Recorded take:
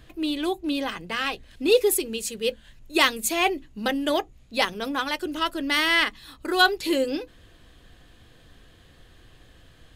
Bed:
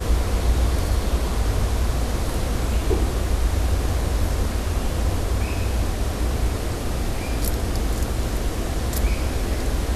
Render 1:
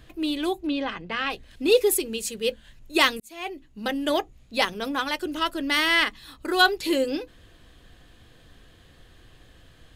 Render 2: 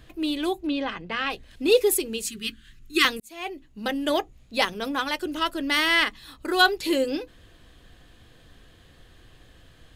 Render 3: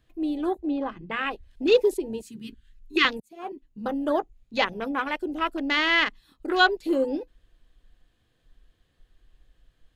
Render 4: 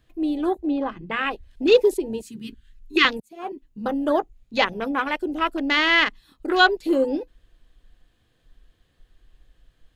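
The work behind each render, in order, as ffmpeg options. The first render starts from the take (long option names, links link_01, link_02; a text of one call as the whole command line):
ffmpeg -i in.wav -filter_complex "[0:a]asplit=3[link_01][link_02][link_03];[link_01]afade=type=out:start_time=0.66:duration=0.02[link_04];[link_02]lowpass=3600,afade=type=in:start_time=0.66:duration=0.02,afade=type=out:start_time=1.29:duration=0.02[link_05];[link_03]afade=type=in:start_time=1.29:duration=0.02[link_06];[link_04][link_05][link_06]amix=inputs=3:normalize=0,asplit=2[link_07][link_08];[link_07]atrim=end=3.2,asetpts=PTS-STARTPTS,afade=type=out:start_time=3.196:duration=0.004:curve=hsin[link_09];[link_08]atrim=start=3.2,asetpts=PTS-STARTPTS,afade=type=in:duration=0.92[link_10];[link_09][link_10]concat=n=2:v=0:a=1" out.wav
ffmpeg -i in.wav -filter_complex "[0:a]asettb=1/sr,asplit=3[link_01][link_02][link_03];[link_01]atrim=end=2.264[link_04];[link_02]atrim=start=2.26:end=3.05,asetpts=PTS-STARTPTS,afade=type=in:duration=0.004:curve=qsin,afade=type=out:start_time=0.786:duration=0.004:curve=qsin,asuperstop=centerf=670:order=20:qfactor=0.98[link_05];[link_03]atrim=start=3.046[link_06];[link_04][link_05]acrossfade=duration=0.004:curve1=hsin:curve2=qsin[link_07];[link_07][link_06]acrossfade=duration=0.004:curve1=qsin:curve2=hsin" out.wav
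ffmpeg -i in.wav -filter_complex "[0:a]afwtdn=0.0282,acrossover=split=4200[link_01][link_02];[link_02]acompressor=threshold=-43dB:ratio=4:attack=1:release=60[link_03];[link_01][link_03]amix=inputs=2:normalize=0" out.wav
ffmpeg -i in.wav -af "volume=3.5dB,alimiter=limit=-3dB:level=0:latency=1" out.wav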